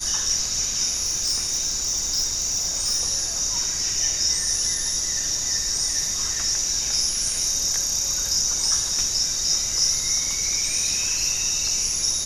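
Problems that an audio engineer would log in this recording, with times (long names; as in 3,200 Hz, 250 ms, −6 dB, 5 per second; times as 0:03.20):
0:01.04–0:03.01: clipping −18.5 dBFS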